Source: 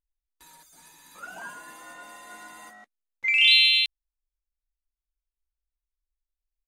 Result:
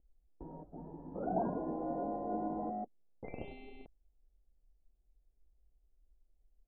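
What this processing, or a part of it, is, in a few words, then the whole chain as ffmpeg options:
under water: -af "lowpass=f=480:w=0.5412,lowpass=f=480:w=1.3066,equalizer=f=760:t=o:w=0.58:g=10,volume=7.94"

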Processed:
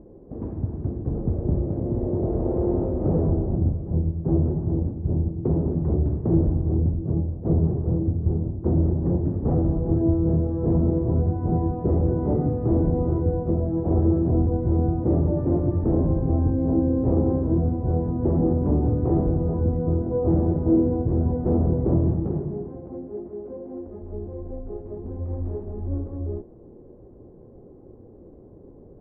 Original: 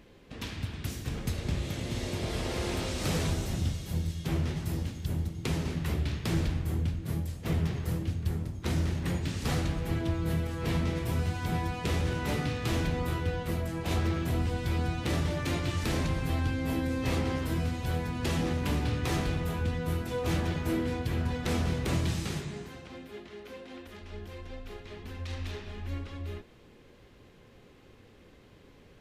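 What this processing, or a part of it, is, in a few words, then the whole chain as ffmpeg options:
under water: -af "lowpass=f=730:w=0.5412,lowpass=f=730:w=1.3066,equalizer=f=350:t=o:w=0.51:g=6,volume=2.51"

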